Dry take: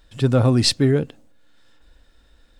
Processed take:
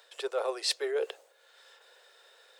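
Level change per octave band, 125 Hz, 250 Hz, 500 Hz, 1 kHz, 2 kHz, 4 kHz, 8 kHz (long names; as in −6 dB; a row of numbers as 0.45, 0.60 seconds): below −40 dB, −27.5 dB, −9.0 dB, −7.5 dB, −7.0 dB, −10.5 dB, −10.5 dB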